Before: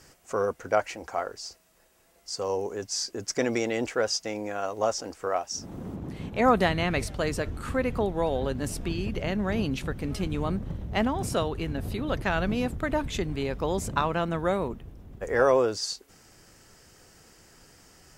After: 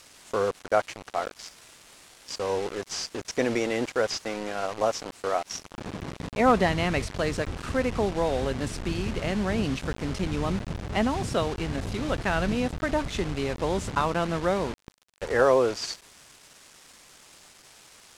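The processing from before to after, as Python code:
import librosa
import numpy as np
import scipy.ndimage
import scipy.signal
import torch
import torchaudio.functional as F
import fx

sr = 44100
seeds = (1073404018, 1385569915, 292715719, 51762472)

y = fx.delta_mod(x, sr, bps=64000, step_db=-33.5)
y = np.where(np.abs(y) >= 10.0 ** (-37.5 / 20.0), y, 0.0)
y = scipy.signal.sosfilt(scipy.signal.bessel(2, 6700.0, 'lowpass', norm='mag', fs=sr, output='sos'), y)
y = y * librosa.db_to_amplitude(1.0)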